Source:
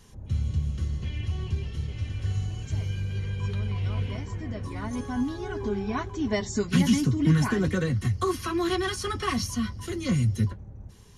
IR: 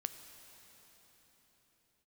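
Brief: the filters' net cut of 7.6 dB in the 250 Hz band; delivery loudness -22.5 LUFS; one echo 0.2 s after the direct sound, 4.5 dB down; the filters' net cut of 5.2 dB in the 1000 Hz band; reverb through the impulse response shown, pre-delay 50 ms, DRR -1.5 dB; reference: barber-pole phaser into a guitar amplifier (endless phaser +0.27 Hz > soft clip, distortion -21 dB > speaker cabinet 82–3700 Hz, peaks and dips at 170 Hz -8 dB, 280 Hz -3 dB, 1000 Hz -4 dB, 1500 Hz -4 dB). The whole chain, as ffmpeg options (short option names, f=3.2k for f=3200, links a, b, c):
-filter_complex "[0:a]equalizer=f=250:t=o:g=-6,equalizer=f=1k:t=o:g=-3,aecho=1:1:200:0.596,asplit=2[a][b];[1:a]atrim=start_sample=2205,adelay=50[c];[b][c]afir=irnorm=-1:irlink=0,volume=2.5dB[d];[a][d]amix=inputs=2:normalize=0,asplit=2[e][f];[f]afreqshift=0.27[g];[e][g]amix=inputs=2:normalize=1,asoftclip=threshold=-17dB,highpass=82,equalizer=f=170:t=q:w=4:g=-8,equalizer=f=280:t=q:w=4:g=-3,equalizer=f=1k:t=q:w=4:g=-4,equalizer=f=1.5k:t=q:w=4:g=-4,lowpass=f=3.7k:w=0.5412,lowpass=f=3.7k:w=1.3066,volume=10dB"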